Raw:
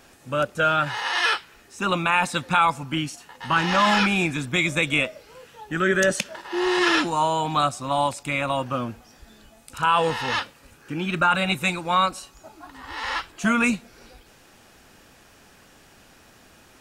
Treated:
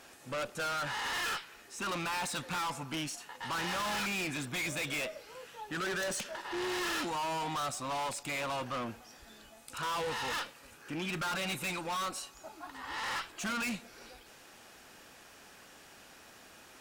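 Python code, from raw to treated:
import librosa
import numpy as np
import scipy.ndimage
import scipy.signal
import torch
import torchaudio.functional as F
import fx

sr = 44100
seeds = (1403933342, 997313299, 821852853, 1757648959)

y = fx.low_shelf(x, sr, hz=230.0, db=-10.5)
y = fx.tube_stage(y, sr, drive_db=32.0, bias=0.2)
y = y * 10.0 ** (-1.0 / 20.0)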